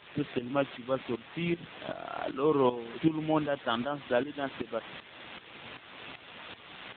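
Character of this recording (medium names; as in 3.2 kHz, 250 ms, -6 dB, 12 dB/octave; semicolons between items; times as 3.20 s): a quantiser's noise floor 6-bit, dither triangular; tremolo saw up 2.6 Hz, depth 75%; AMR-NB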